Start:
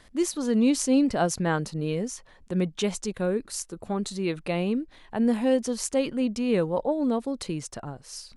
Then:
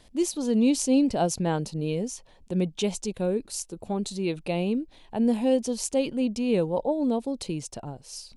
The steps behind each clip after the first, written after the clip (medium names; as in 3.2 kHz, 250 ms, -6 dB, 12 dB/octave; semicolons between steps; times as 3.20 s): high-order bell 1.5 kHz -8.5 dB 1.1 oct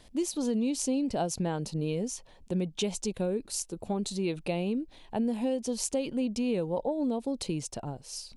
compression, threshold -26 dBFS, peak gain reduction 9 dB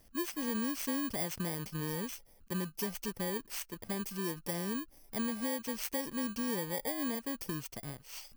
bit-reversed sample order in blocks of 32 samples; trim -6 dB